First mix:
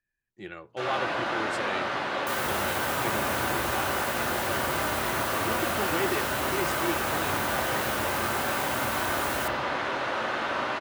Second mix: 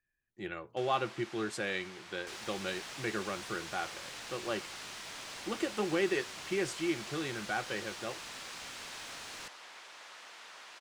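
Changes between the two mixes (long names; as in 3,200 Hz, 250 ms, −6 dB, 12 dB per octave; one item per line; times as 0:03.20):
second sound: add high-frequency loss of the air 100 metres
reverb: off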